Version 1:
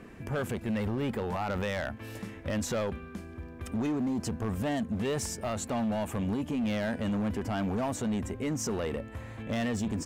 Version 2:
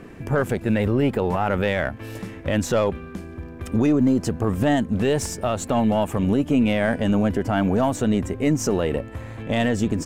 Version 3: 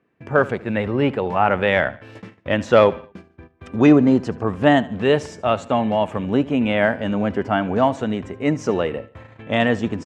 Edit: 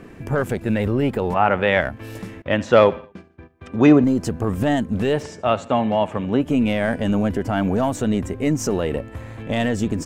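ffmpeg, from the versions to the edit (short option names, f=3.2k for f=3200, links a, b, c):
-filter_complex "[2:a]asplit=3[a][b][c];[1:a]asplit=4[d][e][f][g];[d]atrim=end=1.342[h];[a]atrim=start=1.338:end=1.812[i];[e]atrim=start=1.808:end=2.422[j];[b]atrim=start=2.418:end=4.042[k];[f]atrim=start=4.038:end=5.25[l];[c]atrim=start=5.09:end=6.5[m];[g]atrim=start=6.34[n];[h][i]acrossfade=d=0.004:c1=hsin:c2=hsin[o];[o][j]acrossfade=d=0.004:c1=hsin:c2=hsin[p];[p][k]acrossfade=d=0.004:c1=hsin:c2=hsin[q];[q][l]acrossfade=d=0.004:c1=hsin:c2=hsin[r];[r][m]acrossfade=d=0.16:c1=tri:c2=tri[s];[s][n]acrossfade=d=0.16:c1=tri:c2=tri"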